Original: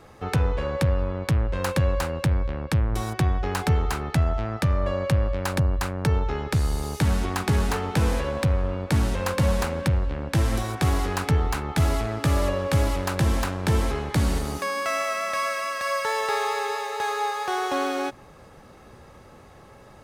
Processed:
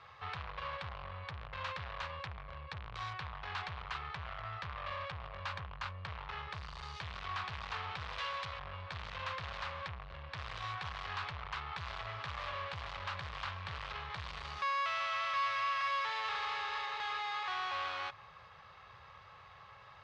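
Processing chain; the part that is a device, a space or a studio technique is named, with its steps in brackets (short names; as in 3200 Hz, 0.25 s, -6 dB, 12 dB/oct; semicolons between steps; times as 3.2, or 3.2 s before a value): 8.18–8.59 tilt +3.5 dB/oct; scooped metal amplifier (tube stage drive 33 dB, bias 0.45; speaker cabinet 100–3900 Hz, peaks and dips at 100 Hz +3 dB, 230 Hz -8 dB, 1100 Hz +8 dB; passive tone stack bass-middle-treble 10-0-10); gain +4 dB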